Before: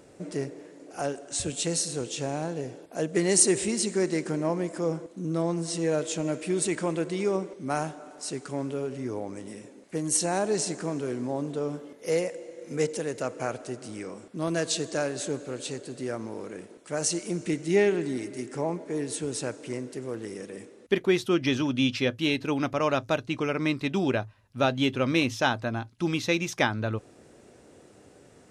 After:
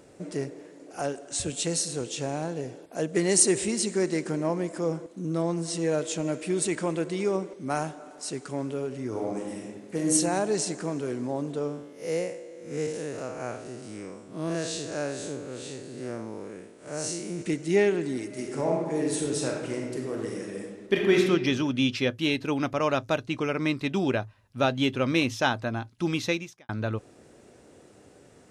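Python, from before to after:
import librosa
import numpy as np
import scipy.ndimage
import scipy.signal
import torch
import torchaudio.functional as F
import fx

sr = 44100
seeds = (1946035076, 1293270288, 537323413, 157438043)

y = fx.reverb_throw(x, sr, start_s=9.08, length_s=1.05, rt60_s=1.1, drr_db=-1.0)
y = fx.spec_blur(y, sr, span_ms=130.0, at=(11.67, 17.41), fade=0.02)
y = fx.reverb_throw(y, sr, start_s=18.26, length_s=2.94, rt60_s=1.2, drr_db=-0.5)
y = fx.edit(y, sr, fx.fade_out_span(start_s=26.28, length_s=0.41, curve='qua'), tone=tone)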